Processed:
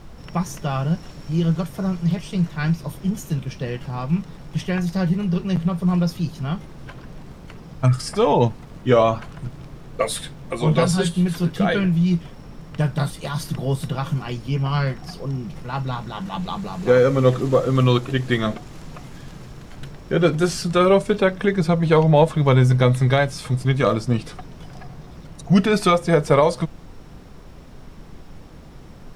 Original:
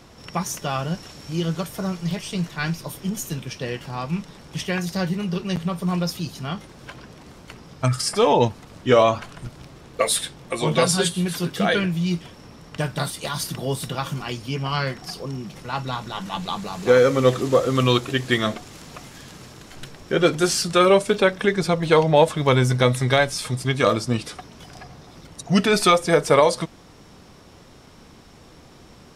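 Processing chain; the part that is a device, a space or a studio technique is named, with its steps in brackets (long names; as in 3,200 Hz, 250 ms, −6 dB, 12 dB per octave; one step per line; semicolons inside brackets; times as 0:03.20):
car interior (parametric band 150 Hz +7 dB 0.75 octaves; high-shelf EQ 2,600 Hz −7.5 dB; brown noise bed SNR 19 dB)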